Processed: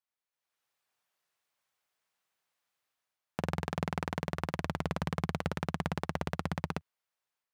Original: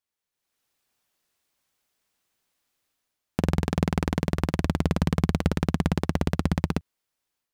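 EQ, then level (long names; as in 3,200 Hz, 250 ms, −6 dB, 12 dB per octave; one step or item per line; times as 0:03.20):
high-pass filter 160 Hz 12 dB per octave
parametric band 270 Hz −14.5 dB 1.9 octaves
high-shelf EQ 2,200 Hz −11 dB
+1.5 dB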